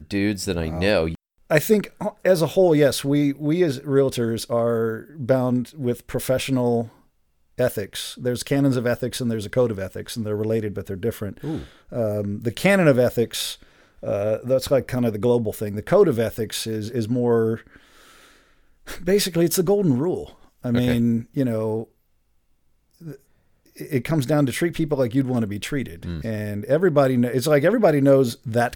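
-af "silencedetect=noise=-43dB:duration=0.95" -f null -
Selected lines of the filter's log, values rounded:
silence_start: 21.84
silence_end: 23.01 | silence_duration: 1.16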